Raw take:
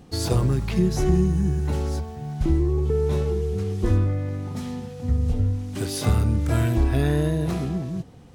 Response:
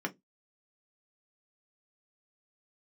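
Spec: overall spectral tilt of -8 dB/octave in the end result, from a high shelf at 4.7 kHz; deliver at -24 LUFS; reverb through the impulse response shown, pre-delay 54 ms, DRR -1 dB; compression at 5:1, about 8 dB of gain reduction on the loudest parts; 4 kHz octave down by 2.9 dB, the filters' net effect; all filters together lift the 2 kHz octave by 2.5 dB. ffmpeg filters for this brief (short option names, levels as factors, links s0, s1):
-filter_complex "[0:a]equalizer=f=2000:t=o:g=4,equalizer=f=4000:t=o:g=-6.5,highshelf=f=4700:g=3.5,acompressor=threshold=0.0631:ratio=5,asplit=2[s0][s1];[1:a]atrim=start_sample=2205,adelay=54[s2];[s1][s2]afir=irnorm=-1:irlink=0,volume=0.668[s3];[s0][s3]amix=inputs=2:normalize=0,volume=1.19"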